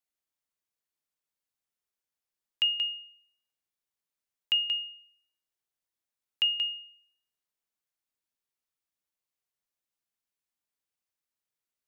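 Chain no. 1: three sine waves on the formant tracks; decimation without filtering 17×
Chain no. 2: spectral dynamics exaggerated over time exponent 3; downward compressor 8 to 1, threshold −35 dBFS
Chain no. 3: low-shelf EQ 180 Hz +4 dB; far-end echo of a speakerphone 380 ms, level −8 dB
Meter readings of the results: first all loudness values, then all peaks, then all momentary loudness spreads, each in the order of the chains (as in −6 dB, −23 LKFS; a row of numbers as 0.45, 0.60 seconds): −32.5, −41.0, −29.0 LKFS; −16.0, −21.5, −17.5 dBFS; 17, 7, 15 LU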